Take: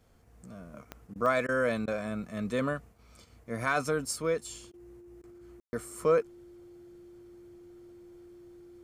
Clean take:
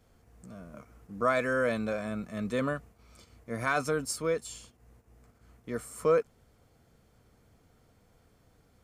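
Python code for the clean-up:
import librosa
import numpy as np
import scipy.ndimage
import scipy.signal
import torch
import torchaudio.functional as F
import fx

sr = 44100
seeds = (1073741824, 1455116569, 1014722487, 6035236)

y = fx.fix_declick_ar(x, sr, threshold=10.0)
y = fx.notch(y, sr, hz=350.0, q=30.0)
y = fx.fix_ambience(y, sr, seeds[0], print_start_s=0.0, print_end_s=0.5, start_s=5.6, end_s=5.73)
y = fx.fix_interpolate(y, sr, at_s=(1.14, 1.47, 1.86, 4.72, 5.22), length_ms=15.0)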